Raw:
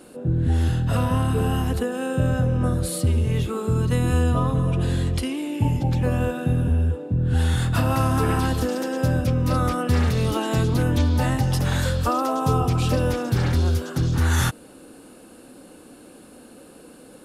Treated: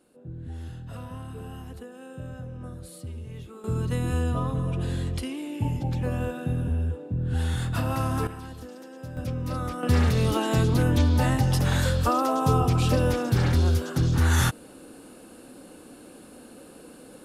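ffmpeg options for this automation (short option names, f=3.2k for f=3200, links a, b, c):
-af "asetnsamples=n=441:p=0,asendcmd='3.64 volume volume -6dB;8.27 volume volume -17.5dB;9.17 volume volume -9dB;9.83 volume volume -1dB',volume=-17dB"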